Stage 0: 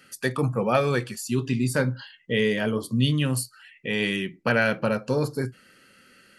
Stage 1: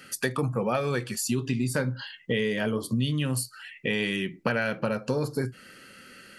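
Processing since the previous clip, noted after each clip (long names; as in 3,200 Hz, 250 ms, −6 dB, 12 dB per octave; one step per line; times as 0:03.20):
downward compressor 4 to 1, threshold −31 dBFS, peak gain reduction 13 dB
level +6 dB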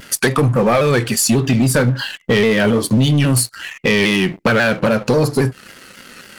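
leveller curve on the samples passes 3
pitch modulation by a square or saw wave saw down 3.7 Hz, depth 100 cents
level +4 dB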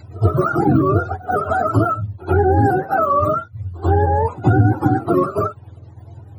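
frequency axis turned over on the octave scale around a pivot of 410 Hz
echo ahead of the sound 90 ms −19 dB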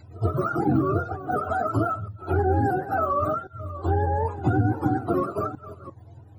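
delay that plays each chunk backwards 347 ms, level −14 dB
on a send at −16 dB: convolution reverb, pre-delay 3 ms
on the sum: level −7.5 dB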